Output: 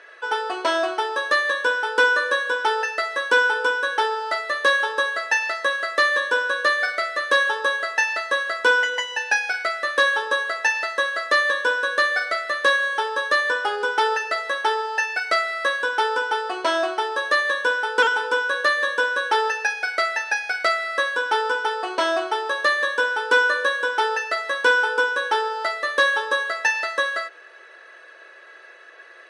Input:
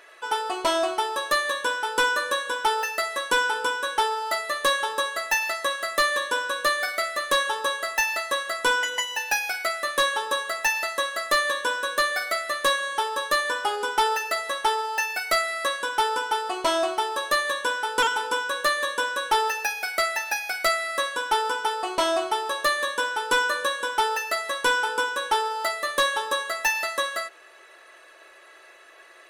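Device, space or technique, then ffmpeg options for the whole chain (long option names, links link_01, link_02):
television speaker: -af "highpass=frequency=230:width=0.5412,highpass=frequency=230:width=1.3066,equalizer=frequency=480:width_type=q:width=4:gain=7,equalizer=frequency=1600:width_type=q:width=4:gain=9,equalizer=frequency=7200:width_type=q:width=4:gain=-8,lowpass=frequency=7800:width=0.5412,lowpass=frequency=7800:width=1.3066"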